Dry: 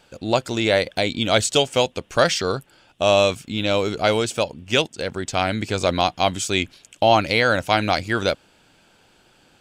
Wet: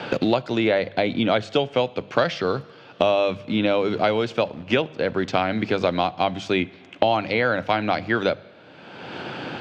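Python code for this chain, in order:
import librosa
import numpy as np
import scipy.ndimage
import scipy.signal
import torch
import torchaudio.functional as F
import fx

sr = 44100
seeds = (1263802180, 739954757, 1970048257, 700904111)

p1 = scipy.signal.sosfilt(scipy.signal.butter(4, 110.0, 'highpass', fs=sr, output='sos'), x)
p2 = fx.high_shelf(p1, sr, hz=10000.0, db=-7.5)
p3 = fx.hum_notches(p2, sr, base_hz=50, count=4)
p4 = fx.quant_dither(p3, sr, seeds[0], bits=6, dither='none')
p5 = p3 + (p4 * librosa.db_to_amplitude(-8.0))
p6 = fx.air_absorb(p5, sr, metres=270.0)
p7 = fx.rev_double_slope(p6, sr, seeds[1], early_s=0.8, late_s=2.2, knee_db=-18, drr_db=20.0)
p8 = fx.band_squash(p7, sr, depth_pct=100)
y = p8 * librosa.db_to_amplitude(-3.5)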